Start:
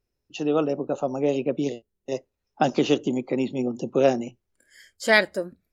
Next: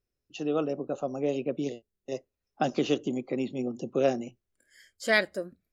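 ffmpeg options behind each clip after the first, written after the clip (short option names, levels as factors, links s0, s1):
-af "bandreject=f=900:w=7.1,volume=0.531"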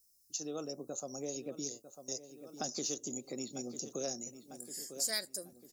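-filter_complex "[0:a]asplit=2[s0][s1];[s1]adelay=948,lowpass=f=3100:p=1,volume=0.168,asplit=2[s2][s3];[s3]adelay=948,lowpass=f=3100:p=1,volume=0.51,asplit=2[s4][s5];[s5]adelay=948,lowpass=f=3100:p=1,volume=0.51,asplit=2[s6][s7];[s7]adelay=948,lowpass=f=3100:p=1,volume=0.51,asplit=2[s8][s9];[s9]adelay=948,lowpass=f=3100:p=1,volume=0.51[s10];[s0][s2][s4][s6][s8][s10]amix=inputs=6:normalize=0,aexciter=amount=10.9:drive=9.9:freq=4700,acompressor=threshold=0.0158:ratio=2,volume=0.501"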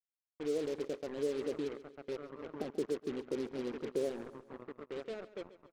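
-af "lowpass=f=440:t=q:w=3.4,acrusher=bits=6:mix=0:aa=0.5,aecho=1:1:137|274|411|548:0.158|0.0745|0.035|0.0165,volume=0.841"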